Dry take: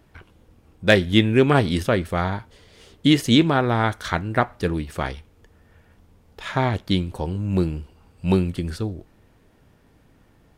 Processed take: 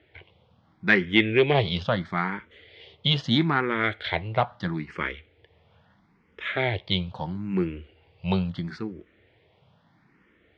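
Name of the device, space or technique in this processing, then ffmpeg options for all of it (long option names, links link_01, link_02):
barber-pole phaser into a guitar amplifier: -filter_complex "[0:a]asplit=2[link_01][link_02];[link_02]afreqshift=0.76[link_03];[link_01][link_03]amix=inputs=2:normalize=1,asoftclip=type=tanh:threshold=-9dB,highpass=110,equalizer=frequency=260:width_type=q:width=4:gain=-7,equalizer=frequency=2100:width_type=q:width=4:gain=8,equalizer=frequency=3300:width_type=q:width=4:gain=5,lowpass=frequency=4300:width=0.5412,lowpass=frequency=4300:width=1.3066"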